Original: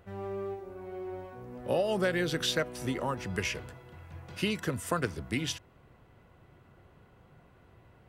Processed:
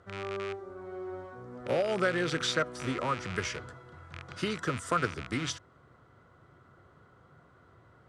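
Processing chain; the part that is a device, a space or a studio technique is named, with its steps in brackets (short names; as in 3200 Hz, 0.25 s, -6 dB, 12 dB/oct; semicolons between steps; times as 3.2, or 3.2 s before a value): car door speaker with a rattle (rattling part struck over -41 dBFS, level -25 dBFS; speaker cabinet 81–8700 Hz, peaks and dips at 200 Hz -4 dB, 820 Hz -3 dB, 1300 Hz +10 dB, 2600 Hz -10 dB)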